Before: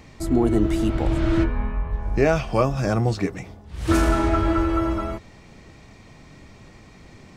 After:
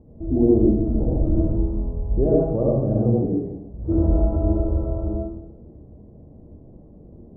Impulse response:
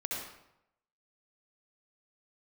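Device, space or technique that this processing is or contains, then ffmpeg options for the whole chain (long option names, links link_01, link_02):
next room: -filter_complex "[0:a]lowpass=frequency=560:width=0.5412,lowpass=frequency=560:width=1.3066[link_01];[1:a]atrim=start_sample=2205[link_02];[link_01][link_02]afir=irnorm=-1:irlink=0"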